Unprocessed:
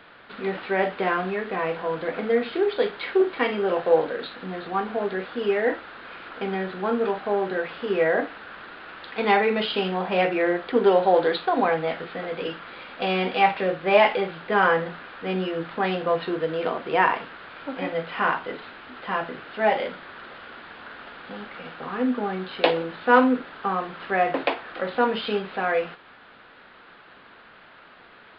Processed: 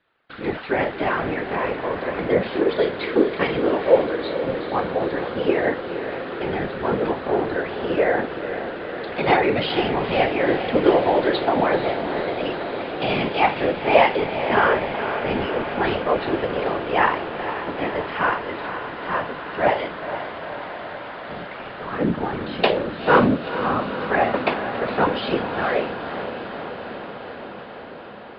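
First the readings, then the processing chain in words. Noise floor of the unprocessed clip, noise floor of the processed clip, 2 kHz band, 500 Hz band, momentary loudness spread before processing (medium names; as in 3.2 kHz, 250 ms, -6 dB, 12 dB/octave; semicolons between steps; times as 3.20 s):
-50 dBFS, -36 dBFS, +2.5 dB, +2.5 dB, 18 LU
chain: gate with hold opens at -37 dBFS; whisper effect; echo that smears into a reverb 479 ms, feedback 76%, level -9.5 dB; trim +1.5 dB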